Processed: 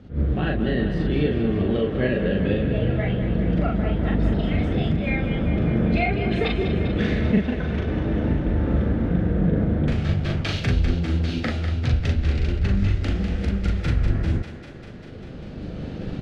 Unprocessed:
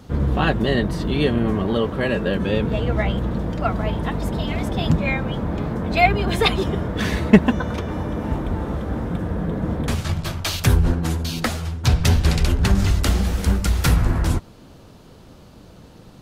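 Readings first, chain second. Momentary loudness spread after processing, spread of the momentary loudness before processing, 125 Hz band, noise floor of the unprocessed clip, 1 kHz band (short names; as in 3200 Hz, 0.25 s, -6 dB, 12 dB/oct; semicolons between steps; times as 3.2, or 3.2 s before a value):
5 LU, 8 LU, -1.0 dB, -45 dBFS, -8.5 dB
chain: recorder AGC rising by 8.4 dB/s; LPF 2400 Hz 12 dB/oct; bell 1000 Hz -14 dB 0.82 oct; compressor 2:1, threshold -20 dBFS, peak gain reduction 8 dB; doubler 40 ms -3 dB; thinning echo 0.198 s, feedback 77%, high-pass 230 Hz, level -9.5 dB; attack slew limiter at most 200 dB/s; gain -1.5 dB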